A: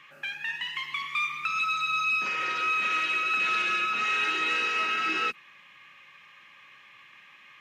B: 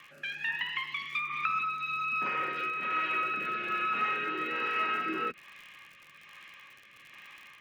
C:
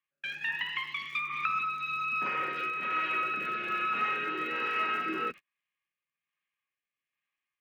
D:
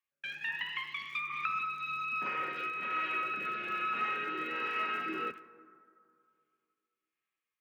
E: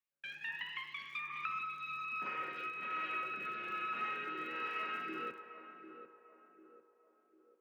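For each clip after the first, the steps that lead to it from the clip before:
rotary speaker horn 1.2 Hz; treble ducked by the level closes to 1700 Hz, closed at -29 dBFS; crackle 68/s -45 dBFS; gain +3 dB
gate -41 dBFS, range -38 dB
reverb RT60 2.4 s, pre-delay 48 ms, DRR 15 dB; gain -3.5 dB
narrowing echo 0.747 s, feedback 52%, band-pass 500 Hz, level -8 dB; gain -5.5 dB

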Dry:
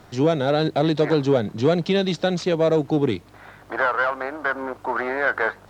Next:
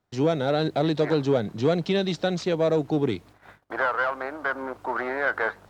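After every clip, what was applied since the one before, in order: gate -43 dBFS, range -26 dB; gain -3.5 dB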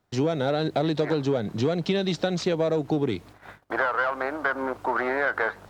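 compressor, threshold -25 dBFS, peak gain reduction 8.5 dB; gain +4.5 dB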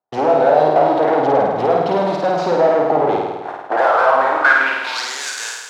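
sample leveller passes 5; band-pass sweep 760 Hz -> 7100 Hz, 4.18–5.12; on a send: flutter echo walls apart 8.9 m, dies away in 1.2 s; on the sum: gain +4 dB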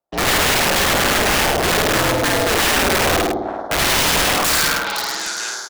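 wrapped overs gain 12.5 dB; echo 0.104 s -5.5 dB; frequency shift -70 Hz

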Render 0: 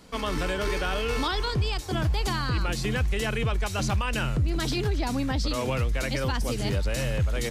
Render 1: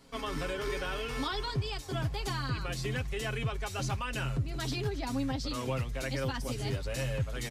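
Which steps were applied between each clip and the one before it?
comb 7.4 ms; gain -8 dB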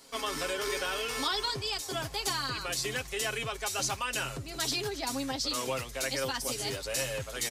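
tone controls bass -14 dB, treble +9 dB; gain +3 dB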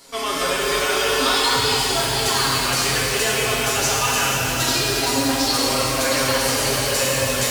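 shimmer reverb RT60 3.9 s, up +12 st, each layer -8 dB, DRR -5.5 dB; gain +6.5 dB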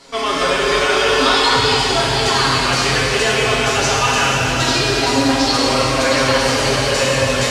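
air absorption 84 m; gain +6 dB

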